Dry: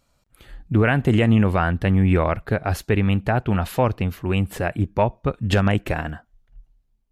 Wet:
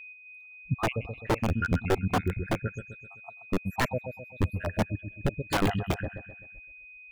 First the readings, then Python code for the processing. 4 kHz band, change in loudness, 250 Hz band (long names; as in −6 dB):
−6.0 dB, −9.5 dB, −11.0 dB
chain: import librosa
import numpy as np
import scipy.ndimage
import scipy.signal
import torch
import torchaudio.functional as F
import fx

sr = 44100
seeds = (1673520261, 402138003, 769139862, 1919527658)

p1 = fx.spec_dropout(x, sr, seeds[0], share_pct=82)
p2 = p1 + 10.0 ** (-38.0 / 20.0) * np.sin(2.0 * np.pi * 2500.0 * np.arange(len(p1)) / sr)
p3 = p2 + fx.echo_feedback(p2, sr, ms=129, feedback_pct=59, wet_db=-8, dry=0)
p4 = (np.mod(10.0 ** (15.5 / 20.0) * p3 + 1.0, 2.0) - 1.0) / 10.0 ** (15.5 / 20.0)
y = fx.spectral_expand(p4, sr, expansion=1.5)